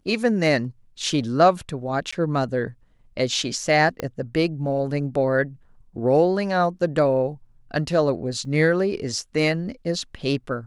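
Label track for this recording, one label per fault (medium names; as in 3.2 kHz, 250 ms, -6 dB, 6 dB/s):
2.110000	2.120000	dropout 15 ms
4.000000	4.000000	pop -13 dBFS
8.450000	8.450000	dropout 2.9 ms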